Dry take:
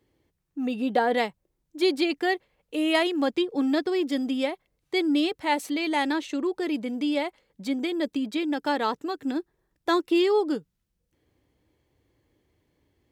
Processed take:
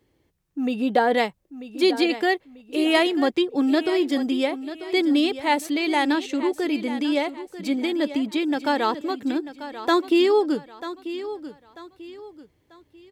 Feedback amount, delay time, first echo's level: 34%, 941 ms, -13.0 dB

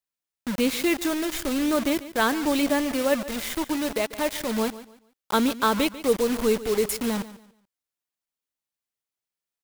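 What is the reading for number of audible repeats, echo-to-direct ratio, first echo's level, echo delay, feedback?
2, -15.5 dB, -16.0 dB, 144 ms, 28%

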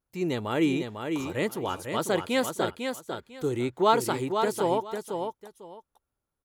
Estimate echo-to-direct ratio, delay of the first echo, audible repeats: -6.0 dB, 499 ms, 2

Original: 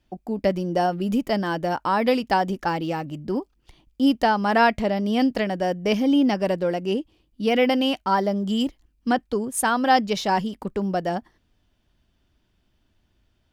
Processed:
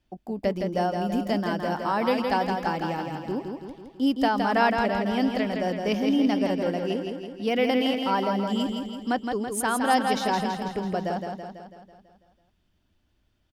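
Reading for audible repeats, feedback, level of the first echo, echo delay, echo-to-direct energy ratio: 7, 57%, -5.0 dB, 165 ms, -3.5 dB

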